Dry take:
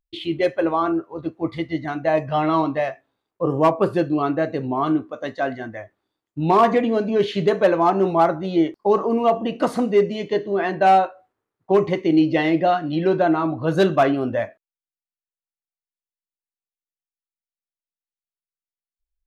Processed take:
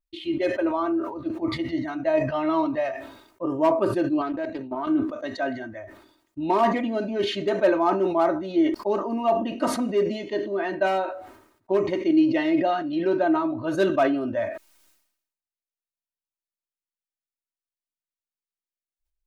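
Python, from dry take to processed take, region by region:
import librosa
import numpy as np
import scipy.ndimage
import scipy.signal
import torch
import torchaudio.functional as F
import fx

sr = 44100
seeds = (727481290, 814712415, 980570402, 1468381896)

y = fx.chain(x, sr, fx.low_shelf(hz=92.0, db=-11.5),
    fx.level_steps(step_db=12),
    fx.doppler_dist(depth_ms=0.18), at=(4.21, 4.87))
y = fx.notch(y, sr, hz=3300.0, q=25.0)
y = y + 0.7 * np.pad(y, (int(3.2 * sr / 1000.0), 0))[:len(y)]
y = fx.sustainer(y, sr, db_per_s=75.0)
y = y * librosa.db_to_amplitude(-7.0)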